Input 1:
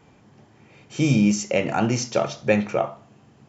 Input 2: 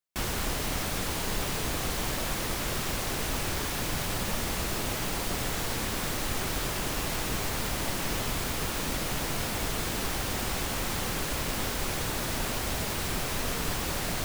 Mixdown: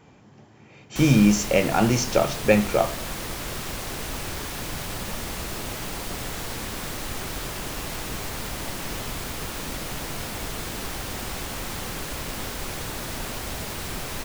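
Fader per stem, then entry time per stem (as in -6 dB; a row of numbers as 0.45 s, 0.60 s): +1.5 dB, -1.0 dB; 0.00 s, 0.80 s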